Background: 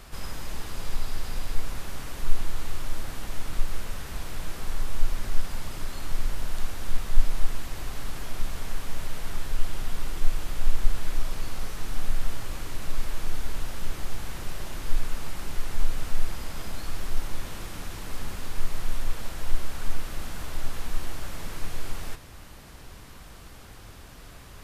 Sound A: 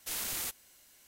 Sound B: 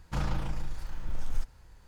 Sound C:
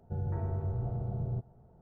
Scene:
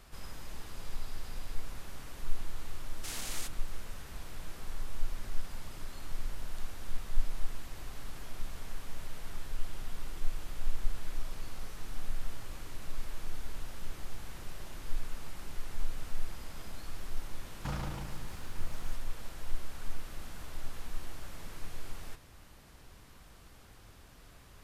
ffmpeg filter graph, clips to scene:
ffmpeg -i bed.wav -i cue0.wav -i cue1.wav -filter_complex "[0:a]volume=-9.5dB[link_01];[1:a]lowpass=9500[link_02];[2:a]highpass=60[link_03];[link_02]atrim=end=1.07,asetpts=PTS-STARTPTS,volume=-2.5dB,afade=type=in:duration=0.004:curve=hsin,afade=type=out:start_time=1.066:duration=0.004:curve=hsin,adelay=2970[link_04];[link_03]atrim=end=1.87,asetpts=PTS-STARTPTS,volume=-4dB,afade=type=in:duration=0.004:curve=hsin,afade=type=out:start_time=1.866:duration=0.004:curve=hsin,adelay=17520[link_05];[link_01][link_04][link_05]amix=inputs=3:normalize=0" out.wav

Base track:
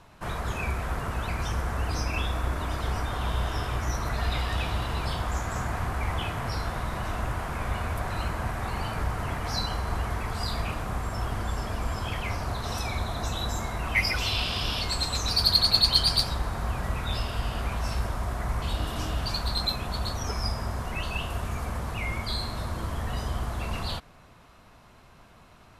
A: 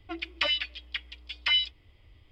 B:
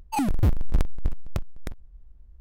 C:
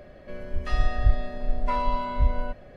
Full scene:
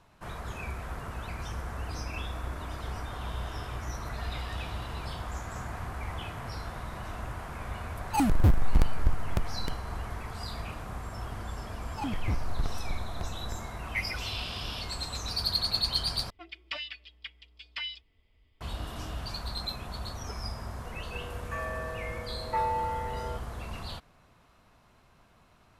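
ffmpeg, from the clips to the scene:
ffmpeg -i bed.wav -i cue0.wav -i cue1.wav -i cue2.wav -filter_complex "[2:a]asplit=2[link_01][link_02];[0:a]volume=-7.5dB[link_03];[link_02]acrossover=split=5800[link_04][link_05];[link_05]acompressor=threshold=-54dB:ratio=4:attack=1:release=60[link_06];[link_04][link_06]amix=inputs=2:normalize=0[link_07];[1:a]aecho=1:1:4.5:0.44[link_08];[3:a]highpass=frequency=540:width_type=q:width=0.5412,highpass=frequency=540:width_type=q:width=1.307,lowpass=frequency=2500:width_type=q:width=0.5176,lowpass=frequency=2500:width_type=q:width=0.7071,lowpass=frequency=2500:width_type=q:width=1.932,afreqshift=-100[link_09];[link_03]asplit=2[link_10][link_11];[link_10]atrim=end=16.304[link_12];[link_08]atrim=end=2.31,asetpts=PTS-STARTPTS,volume=-9.5dB[link_13];[link_11]atrim=start=18.606[link_14];[link_01]atrim=end=2.4,asetpts=PTS-STARTPTS,volume=-0.5dB,afade=type=in:duration=0.004:curve=hsin,afade=type=out:start_time=2.396:duration=0.004:curve=hsin,adelay=8010[link_15];[link_07]atrim=end=2.4,asetpts=PTS-STARTPTS,volume=-9.5dB,afade=type=in:duration=0.004:curve=hsin,afade=type=out:start_time=2.396:duration=0.004:curve=hsin,adelay=11850[link_16];[link_09]atrim=end=2.76,asetpts=PTS-STARTPTS,volume=-1dB,afade=type=in:duration=0.004:curve=hsin,afade=type=out:start_time=2.756:duration=0.004:curve=hsin,adelay=20850[link_17];[link_12][link_13]acrossfade=duration=0.004:curve1=hsin:curve2=hsin[link_18];[link_18][link_14]acrossfade=duration=0.004:curve1=hsin:curve2=hsin[link_19];[link_19][link_15][link_16][link_17]amix=inputs=4:normalize=0" out.wav

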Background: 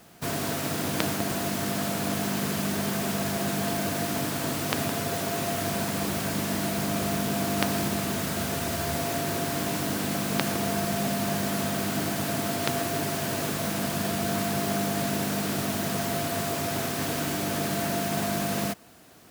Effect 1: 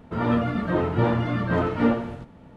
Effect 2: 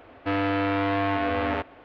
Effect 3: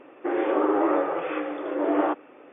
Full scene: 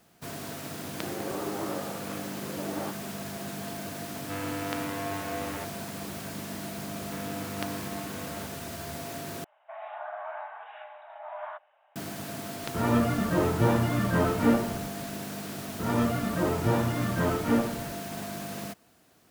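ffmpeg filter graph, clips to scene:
ffmpeg -i bed.wav -i cue0.wav -i cue1.wav -i cue2.wav -filter_complex "[3:a]asplit=2[link_01][link_02];[2:a]asplit=2[link_03][link_04];[1:a]asplit=2[link_05][link_06];[0:a]volume=-9dB[link_07];[link_04]acompressor=threshold=-29dB:ratio=2:attack=89:release=490:knee=1:detection=peak[link_08];[link_02]afreqshift=310[link_09];[link_07]asplit=2[link_10][link_11];[link_10]atrim=end=9.444[link_12];[link_09]atrim=end=2.52,asetpts=PTS-STARTPTS,volume=-16dB[link_13];[link_11]atrim=start=11.956[link_14];[link_01]atrim=end=2.52,asetpts=PTS-STARTPTS,volume=-12.5dB,afade=type=in:duration=0.004:curve=hsin,afade=type=out:start_time=2.516:duration=0.004:curve=hsin,adelay=780[link_15];[link_03]atrim=end=1.84,asetpts=PTS-STARTPTS,volume=-10dB,afade=type=in:duration=0.004:curve=hsin,afade=type=out:start_time=1.836:duration=0.004:curve=hsin,adelay=4030[link_16];[link_08]atrim=end=1.84,asetpts=PTS-STARTPTS,volume=-13.5dB,afade=type=in:duration=0.004:curve=hsin,afade=type=out:start_time=1.836:duration=0.004:curve=hsin,adelay=6850[link_17];[link_05]atrim=end=2.56,asetpts=PTS-STARTPTS,volume=-2dB,afade=type=in:duration=0.004:curve=hsin,afade=type=out:start_time=2.556:duration=0.004:curve=hsin,adelay=12630[link_18];[link_06]atrim=end=2.56,asetpts=PTS-STARTPTS,volume=-4dB,afade=type=in:duration=0.004:curve=hsin,afade=type=out:start_time=2.556:duration=0.004:curve=hsin,adelay=15680[link_19];[link_12][link_13]acrossfade=duration=0.004:curve1=hsin:curve2=hsin[link_20];[link_20][link_14]acrossfade=duration=0.004:curve1=hsin:curve2=hsin[link_21];[link_21][link_15][link_16][link_17][link_18][link_19]amix=inputs=6:normalize=0" out.wav

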